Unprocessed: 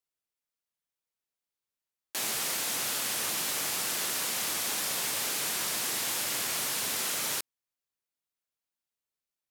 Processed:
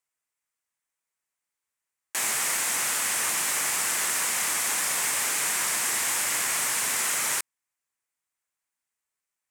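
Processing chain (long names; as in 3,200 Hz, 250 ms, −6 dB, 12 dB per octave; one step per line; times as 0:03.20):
octave-band graphic EQ 1,000/2,000/4,000/8,000 Hz +6/+9/−4/+10 dB
level −1 dB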